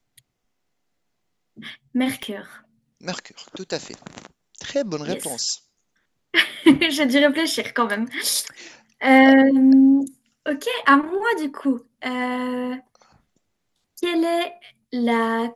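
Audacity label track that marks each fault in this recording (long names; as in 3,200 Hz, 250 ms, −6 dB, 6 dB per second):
2.230000	2.230000	click −18 dBFS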